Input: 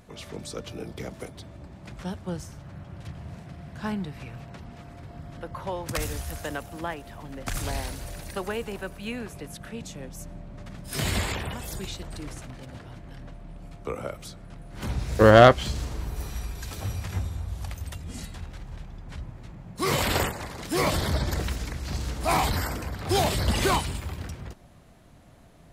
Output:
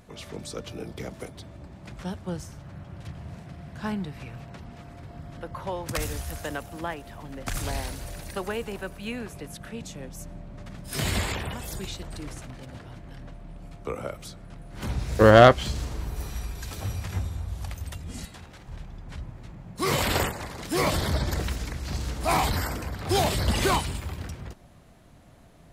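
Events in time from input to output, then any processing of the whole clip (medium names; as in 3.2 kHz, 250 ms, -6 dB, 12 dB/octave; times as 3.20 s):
18.25–18.68 s: high-pass 200 Hz 6 dB/octave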